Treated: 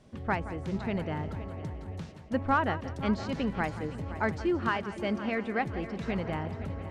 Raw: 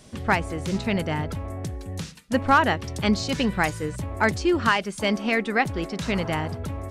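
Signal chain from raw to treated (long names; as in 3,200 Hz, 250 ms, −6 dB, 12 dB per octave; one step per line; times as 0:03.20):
low-pass filter 1,500 Hz 6 dB per octave
echo machine with several playback heads 172 ms, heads first and third, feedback 57%, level −15 dB
level −6.5 dB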